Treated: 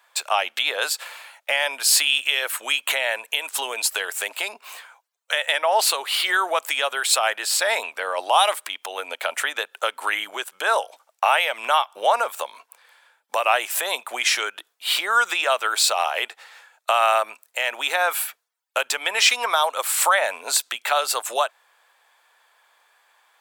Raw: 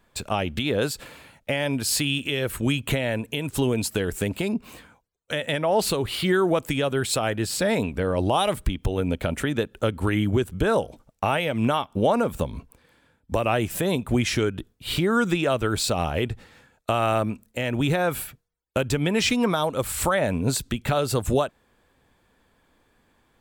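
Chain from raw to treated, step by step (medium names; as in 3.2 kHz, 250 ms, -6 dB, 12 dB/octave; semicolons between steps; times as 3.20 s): high-pass 730 Hz 24 dB/octave; trim +7.5 dB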